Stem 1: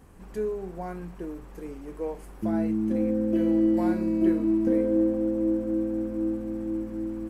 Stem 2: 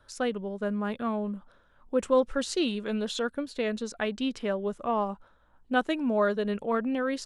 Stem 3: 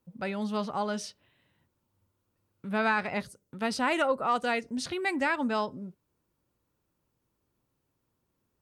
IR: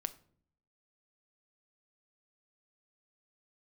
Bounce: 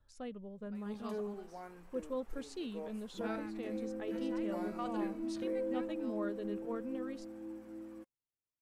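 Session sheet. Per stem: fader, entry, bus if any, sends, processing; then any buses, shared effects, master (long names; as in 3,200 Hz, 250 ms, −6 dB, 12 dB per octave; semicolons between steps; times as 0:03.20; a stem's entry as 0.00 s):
−4.5 dB, 0.75 s, no send, high-pass filter 530 Hz 6 dB per octave
−14.0 dB, 0.00 s, no send, low-shelf EQ 290 Hz +12 dB; notch filter 1,500 Hz, Q 16
−10.5 dB, 0.50 s, no send, gate pattern "x.xx........" 84 BPM −12 dB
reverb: not used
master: flanger 0.4 Hz, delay 1.1 ms, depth 1.7 ms, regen +76%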